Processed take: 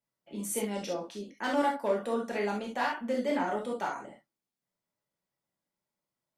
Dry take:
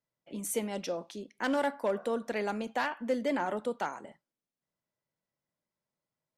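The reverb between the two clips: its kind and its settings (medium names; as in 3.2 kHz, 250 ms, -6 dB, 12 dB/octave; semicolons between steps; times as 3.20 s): gated-style reverb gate 90 ms flat, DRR -2 dB; trim -3 dB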